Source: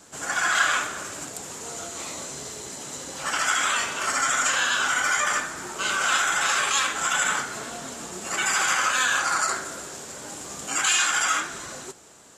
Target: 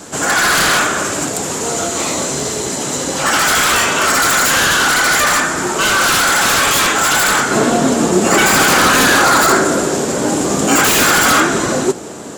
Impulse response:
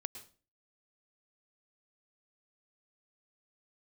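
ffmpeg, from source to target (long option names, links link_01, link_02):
-af "aeval=exprs='0.355*sin(PI/2*4.47*val(0)/0.355)':channel_layout=same,asetnsamples=nb_out_samples=441:pad=0,asendcmd='7.51 equalizer g 13.5',equalizer=frequency=280:width_type=o:width=2.9:gain=5.5,volume=-1.5dB"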